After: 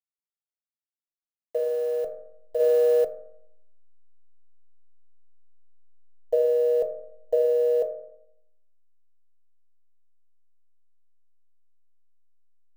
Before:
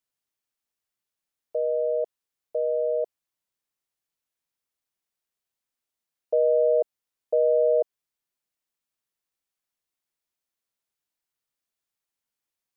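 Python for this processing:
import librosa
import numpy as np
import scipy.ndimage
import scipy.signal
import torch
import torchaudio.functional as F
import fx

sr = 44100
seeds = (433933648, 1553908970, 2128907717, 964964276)

y = fx.delta_hold(x, sr, step_db=-44.0)
y = fx.rev_fdn(y, sr, rt60_s=0.75, lf_ratio=1.25, hf_ratio=0.35, size_ms=12.0, drr_db=4.0)
y = fx.env_flatten(y, sr, amount_pct=100, at=(2.59, 3.03), fade=0.02)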